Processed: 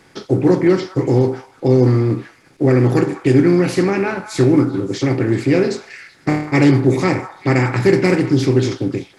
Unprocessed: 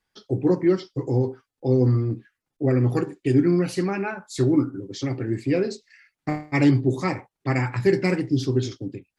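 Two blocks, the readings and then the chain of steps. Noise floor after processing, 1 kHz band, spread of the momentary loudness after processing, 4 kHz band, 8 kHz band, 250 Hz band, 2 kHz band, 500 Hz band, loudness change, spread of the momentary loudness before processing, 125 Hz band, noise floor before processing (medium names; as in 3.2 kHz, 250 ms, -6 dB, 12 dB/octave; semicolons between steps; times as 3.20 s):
-50 dBFS, +8.0 dB, 8 LU, +8.0 dB, +8.0 dB, +7.5 dB, +8.5 dB, +8.0 dB, +7.5 dB, 11 LU, +6.5 dB, -84 dBFS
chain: spectral levelling over time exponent 0.6; repeats whose band climbs or falls 192 ms, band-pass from 1.1 kHz, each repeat 1.4 oct, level -10 dB; trim +4 dB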